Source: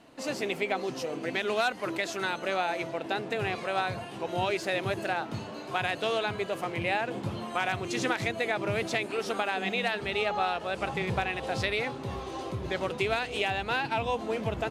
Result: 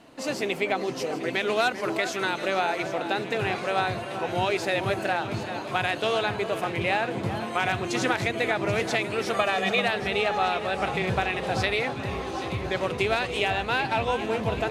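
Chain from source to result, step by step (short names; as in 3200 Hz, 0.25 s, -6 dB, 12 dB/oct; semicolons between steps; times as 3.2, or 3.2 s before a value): 9.33–9.8 comb 1.7 ms, depth 90%; echo with dull and thin repeats by turns 0.391 s, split 1800 Hz, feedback 76%, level -9.5 dB; gain +3.5 dB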